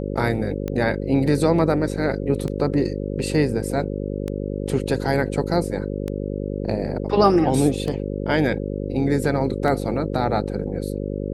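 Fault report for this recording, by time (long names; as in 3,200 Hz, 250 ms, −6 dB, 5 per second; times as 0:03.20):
mains buzz 50 Hz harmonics 11 −27 dBFS
scratch tick 33 1/3 rpm −15 dBFS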